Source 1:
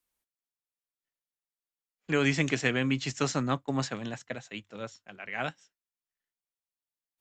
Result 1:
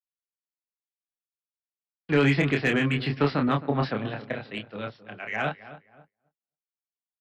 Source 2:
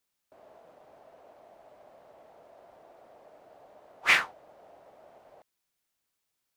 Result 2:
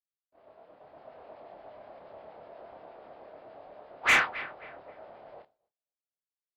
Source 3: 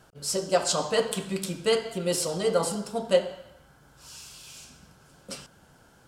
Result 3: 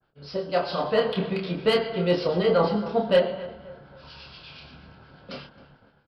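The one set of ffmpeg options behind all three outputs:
-filter_complex "[0:a]acrossover=split=1400[a][b];[a]aeval=exprs='val(0)*(1-0.5/2+0.5/2*cos(2*PI*8.4*n/s))':c=same[c];[b]aeval=exprs='val(0)*(1-0.5/2-0.5/2*cos(2*PI*8.4*n/s))':c=same[d];[c][d]amix=inputs=2:normalize=0,asplit=2[e][f];[f]adelay=28,volume=-4dB[g];[e][g]amix=inputs=2:normalize=0,dynaudnorm=f=260:g=7:m=7dB,aresample=11025,asoftclip=type=hard:threshold=-12dB,aresample=44100,lowpass=4k,asplit=2[h][i];[i]adelay=265,lowpass=f=1.6k:p=1,volume=-15dB,asplit=2[j][k];[k]adelay=265,lowpass=f=1.6k:p=1,volume=0.39,asplit=2[l][m];[m]adelay=265,lowpass=f=1.6k:p=1,volume=0.39,asplit=2[n][o];[o]adelay=265,lowpass=f=1.6k:p=1,volume=0.39[p];[h][j][l][n][p]amix=inputs=5:normalize=0,agate=range=-33dB:threshold=-51dB:ratio=3:detection=peak,acrossover=split=410|1300[q][r][s];[s]asoftclip=type=tanh:threshold=-19dB[t];[q][r][t]amix=inputs=3:normalize=0,adynamicequalizer=threshold=0.0112:dfrequency=3000:dqfactor=0.7:tfrequency=3000:tqfactor=0.7:attack=5:release=100:ratio=0.375:range=2:mode=cutabove:tftype=highshelf"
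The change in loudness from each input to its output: +4.5, -0.5, +2.5 LU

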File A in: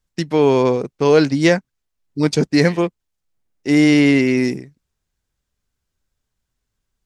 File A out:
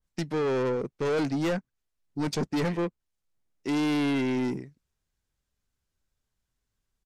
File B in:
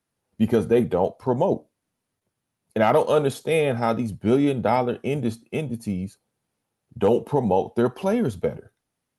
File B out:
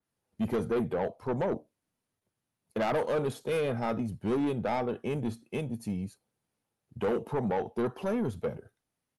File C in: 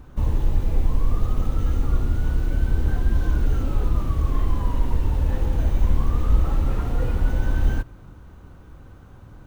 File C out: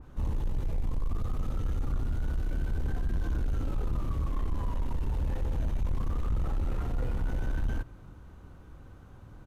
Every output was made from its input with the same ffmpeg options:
-af "asoftclip=type=tanh:threshold=-19dB,aresample=32000,aresample=44100,adynamicequalizer=threshold=0.00708:dfrequency=2500:dqfactor=0.7:tfrequency=2500:tqfactor=0.7:attack=5:release=100:ratio=0.375:range=3.5:mode=cutabove:tftype=highshelf,volume=-5dB"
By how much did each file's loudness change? -12.5, -9.0, -9.5 LU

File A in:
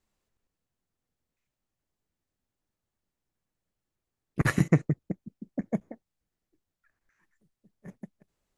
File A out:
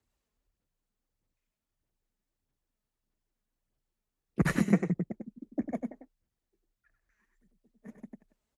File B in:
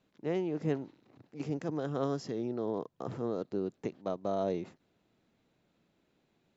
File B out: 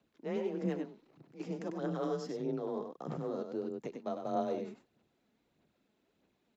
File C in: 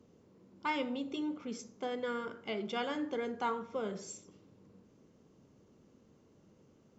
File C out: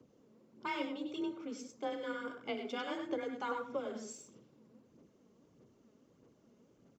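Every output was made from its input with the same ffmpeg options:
-af "aecho=1:1:98:0.473,afreqshift=28,aphaser=in_gain=1:out_gain=1:delay=4.8:decay=0.43:speed=1.6:type=sinusoidal,volume=-4.5dB"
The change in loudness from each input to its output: -2.0, -2.5, -2.5 LU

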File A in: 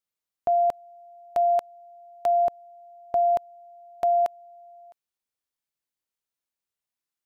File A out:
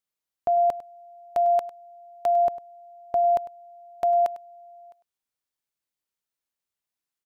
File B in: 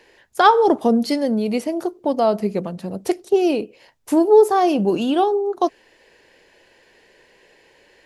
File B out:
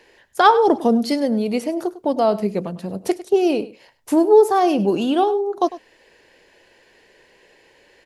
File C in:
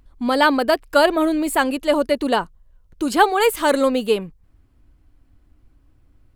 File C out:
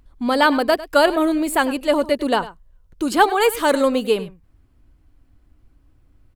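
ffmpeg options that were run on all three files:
-af "aecho=1:1:101:0.15"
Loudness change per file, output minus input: +0.5, 0.0, 0.0 LU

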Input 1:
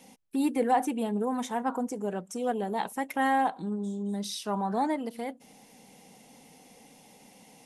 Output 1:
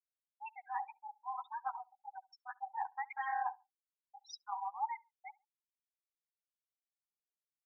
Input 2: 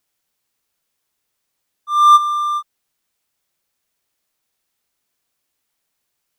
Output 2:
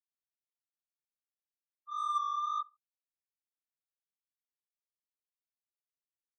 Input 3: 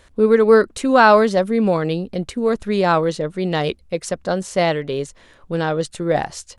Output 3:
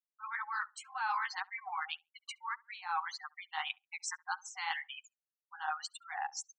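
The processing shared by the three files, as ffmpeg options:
-filter_complex "[0:a]afftfilt=real='re*between(b*sr/4096,750,8900)':imag='im*between(b*sr/4096,750,8900)':win_size=4096:overlap=0.75,bandreject=f=3.8k:w=11,afftfilt=real='re*gte(hypot(re,im),0.0447)':imag='im*gte(hypot(re,im),0.0447)':win_size=1024:overlap=0.75,areverse,acompressor=threshold=-31dB:ratio=6,areverse,flanger=delay=5.6:depth=8.1:regen=3:speed=1.8:shape=sinusoidal,asplit=2[a][b];[b]adelay=69,lowpass=f=1.2k:p=1,volume=-22dB,asplit=2[c][d];[d]adelay=69,lowpass=f=1.2k:p=1,volume=0.34[e];[c][e]amix=inputs=2:normalize=0[f];[a][f]amix=inputs=2:normalize=0"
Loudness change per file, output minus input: -12.0, -21.0, -21.0 LU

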